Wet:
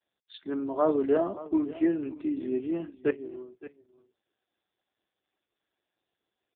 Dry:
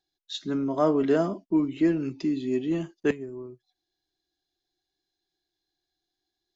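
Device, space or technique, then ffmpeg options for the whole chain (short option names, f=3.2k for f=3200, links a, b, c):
satellite phone: -filter_complex "[0:a]asettb=1/sr,asplit=3[a][b][c];[a]atrim=end=1.874[d];[b]atrim=start=1.87:end=3.29,asetpts=PTS-STARTPTS,afade=t=in:d=0.004:c=qsin,afade=t=out:st=1.416:d=0.004:c=qsin,lowshelf=f=140:g=2.5[e];[c]atrim=start=3.286[f];[d][e]acrossfade=d=0.004:c1=hsin:c2=qsin[g];[g][f]acrossfade=d=0.004:c1=qsin:c2=hsin,highpass=310,lowpass=3k,aecho=1:1:566:0.15" -ar 8000 -c:a libopencore_amrnb -b:a 4750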